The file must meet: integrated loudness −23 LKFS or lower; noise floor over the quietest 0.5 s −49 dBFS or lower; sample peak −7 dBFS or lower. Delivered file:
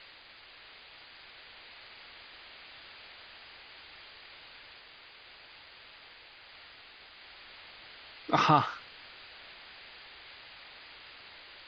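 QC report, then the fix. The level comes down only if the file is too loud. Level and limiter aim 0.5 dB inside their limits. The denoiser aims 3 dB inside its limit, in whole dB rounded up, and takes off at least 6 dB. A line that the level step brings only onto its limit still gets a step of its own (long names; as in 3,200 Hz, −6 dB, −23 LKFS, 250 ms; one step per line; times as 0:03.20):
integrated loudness −33.5 LKFS: in spec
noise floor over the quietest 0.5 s −54 dBFS: in spec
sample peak −9.0 dBFS: in spec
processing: no processing needed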